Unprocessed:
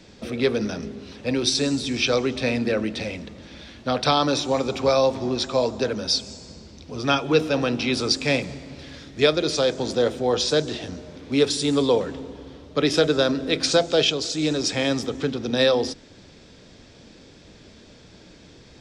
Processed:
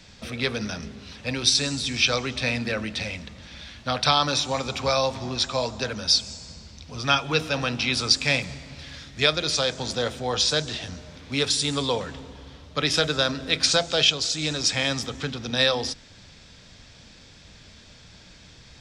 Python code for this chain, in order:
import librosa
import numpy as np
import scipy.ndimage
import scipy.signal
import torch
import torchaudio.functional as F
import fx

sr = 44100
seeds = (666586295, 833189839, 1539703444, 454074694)

y = fx.peak_eq(x, sr, hz=360.0, db=-13.5, octaves=1.7)
y = y * librosa.db_to_amplitude(3.0)